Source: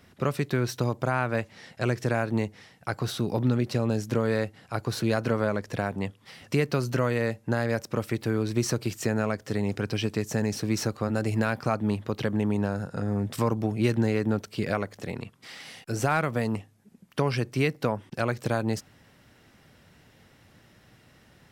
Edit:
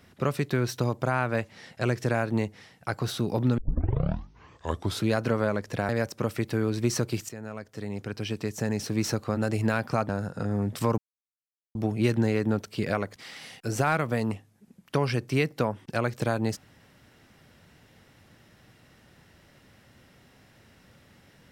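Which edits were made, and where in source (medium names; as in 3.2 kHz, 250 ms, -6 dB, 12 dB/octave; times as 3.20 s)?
3.58 s: tape start 1.52 s
5.89–7.62 s: delete
9.02–10.77 s: fade in, from -15.5 dB
11.82–12.66 s: delete
13.55 s: insert silence 0.77 s
14.96–15.40 s: delete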